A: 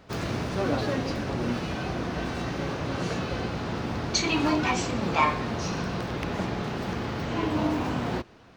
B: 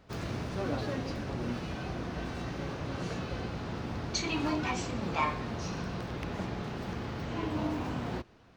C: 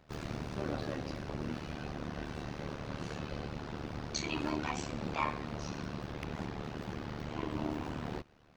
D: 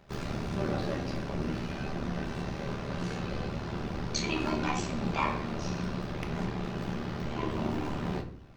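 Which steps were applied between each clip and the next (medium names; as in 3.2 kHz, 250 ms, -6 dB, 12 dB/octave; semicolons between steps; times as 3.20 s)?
bass shelf 110 Hz +5.5 dB; trim -7.5 dB
AM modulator 74 Hz, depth 85%
reverberation RT60 0.55 s, pre-delay 5 ms, DRR 4.5 dB; trim +3.5 dB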